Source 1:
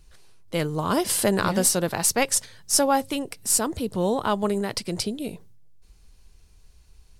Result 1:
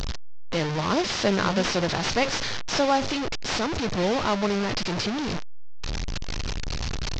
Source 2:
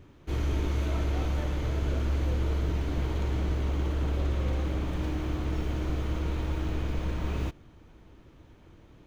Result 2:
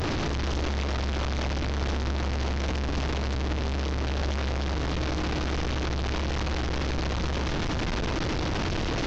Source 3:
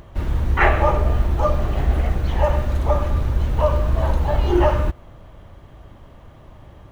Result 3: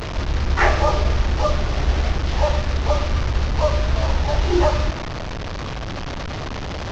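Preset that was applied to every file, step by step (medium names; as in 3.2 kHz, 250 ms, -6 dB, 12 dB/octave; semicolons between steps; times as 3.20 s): one-bit delta coder 32 kbps, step -20.5 dBFS; trim -1 dB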